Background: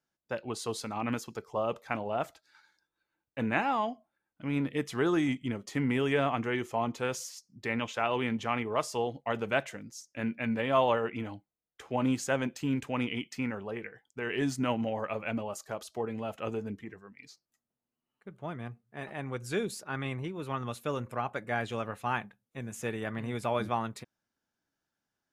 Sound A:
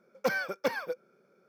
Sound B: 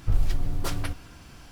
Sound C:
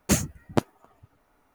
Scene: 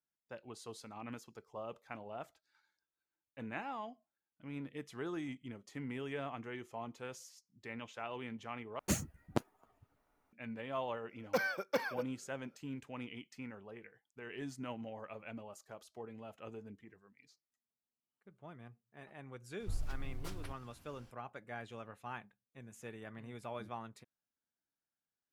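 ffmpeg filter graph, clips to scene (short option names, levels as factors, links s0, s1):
-filter_complex "[0:a]volume=0.211,asplit=2[s0][s1];[s0]atrim=end=8.794[s2];[3:a]atrim=end=1.54,asetpts=PTS-STARTPTS,volume=0.266[s3];[s1]atrim=start=10.326[s4];[1:a]atrim=end=1.48,asetpts=PTS-STARTPTS,volume=0.596,afade=t=in:d=0.004:c=hsin,afade=t=out:st=1.476:d=0.004:c=hsin,adelay=11090[s5];[2:a]atrim=end=1.51,asetpts=PTS-STARTPTS,volume=0.158,afade=t=in:d=0.004:c=hsin,afade=t=out:st=1.506:d=0.004:c=hsin,adelay=19600[s6];[s2][s3]acrossfade=d=0.004:c1=hsin:c2=hsin[s7];[s7][s4]acrossfade=d=0.004:c1=hsin:c2=hsin[s8];[s8][s5][s6]amix=inputs=3:normalize=0"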